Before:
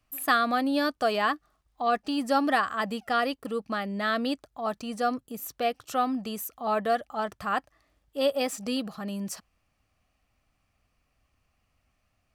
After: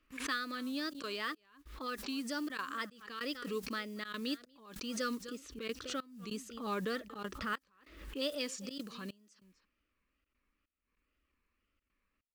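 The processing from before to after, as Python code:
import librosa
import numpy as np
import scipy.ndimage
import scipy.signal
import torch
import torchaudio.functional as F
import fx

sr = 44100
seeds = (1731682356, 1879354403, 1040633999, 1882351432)

y = scipy.signal.sosfilt(scipy.signal.butter(2, 6000.0, 'lowpass', fs=sr, output='sos'), x)
y = fx.fixed_phaser(y, sr, hz=300.0, stages=4)
y = y + 10.0 ** (-22.0 / 20.0) * np.pad(y, (int(247 * sr / 1000.0), 0))[:len(y)]
y = fx.env_lowpass(y, sr, base_hz=2100.0, full_db=-29.0)
y = fx.mod_noise(y, sr, seeds[0], snr_db=29)
y = fx.low_shelf(y, sr, hz=320.0, db=7.5, at=(5.44, 7.54))
y = fx.wow_flutter(y, sr, seeds[1], rate_hz=2.1, depth_cents=110.0)
y = fx.bass_treble(y, sr, bass_db=-6, treble_db=6)
y = fx.rider(y, sr, range_db=4, speed_s=0.5)
y = fx.step_gate(y, sr, bpm=145, pattern='.xxxxxxxx.xxx..', floor_db=-24.0, edge_ms=4.5)
y = fx.pre_swell(y, sr, db_per_s=73.0)
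y = F.gain(torch.from_numpy(y), -6.0).numpy()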